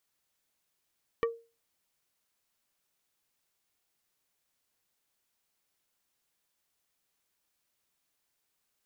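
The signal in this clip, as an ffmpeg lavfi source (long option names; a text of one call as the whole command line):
ffmpeg -f lavfi -i "aevalsrc='0.075*pow(10,-3*t/0.32)*sin(2*PI*462*t)+0.0447*pow(10,-3*t/0.107)*sin(2*PI*1155*t)+0.0266*pow(10,-3*t/0.061)*sin(2*PI*1848*t)+0.0158*pow(10,-3*t/0.046)*sin(2*PI*2310*t)+0.00944*pow(10,-3*t/0.034)*sin(2*PI*3003*t)':duration=0.45:sample_rate=44100" out.wav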